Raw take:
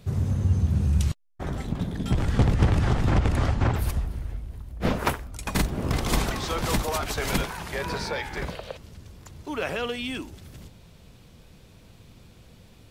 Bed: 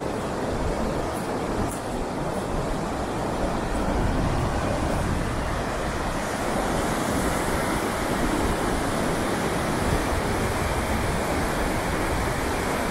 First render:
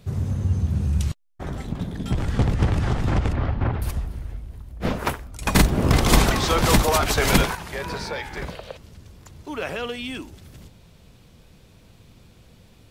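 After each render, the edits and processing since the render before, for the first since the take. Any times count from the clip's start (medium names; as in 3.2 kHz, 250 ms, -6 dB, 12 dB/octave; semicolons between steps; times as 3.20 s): 3.33–3.82 s: distance through air 290 m; 5.42–7.55 s: gain +8 dB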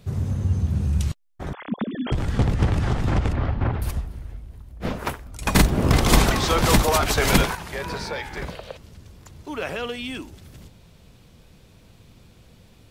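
1.53–2.12 s: formants replaced by sine waves; 4.01–5.26 s: gain -3 dB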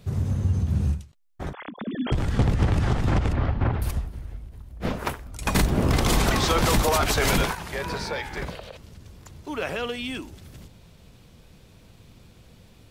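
peak limiter -11.5 dBFS, peak gain reduction 9 dB; endings held to a fixed fall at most 180 dB/s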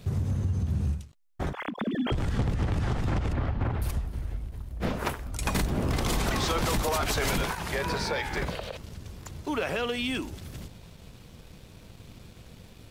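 compression 3:1, threshold -30 dBFS, peak gain reduction 10.5 dB; waveshaping leveller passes 1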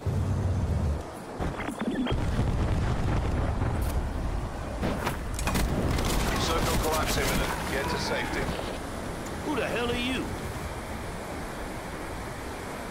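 add bed -11 dB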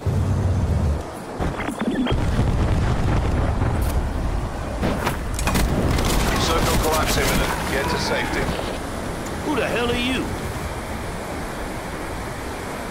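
trim +7 dB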